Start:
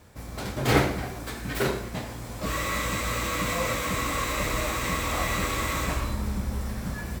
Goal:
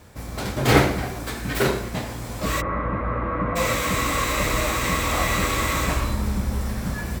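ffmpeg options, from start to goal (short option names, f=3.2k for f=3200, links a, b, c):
-filter_complex "[0:a]asplit=3[a][b][c];[a]afade=t=out:st=2.6:d=0.02[d];[b]lowpass=f=1.5k:w=0.5412,lowpass=f=1.5k:w=1.3066,afade=t=in:st=2.6:d=0.02,afade=t=out:st=3.55:d=0.02[e];[c]afade=t=in:st=3.55:d=0.02[f];[d][e][f]amix=inputs=3:normalize=0,volume=5dB"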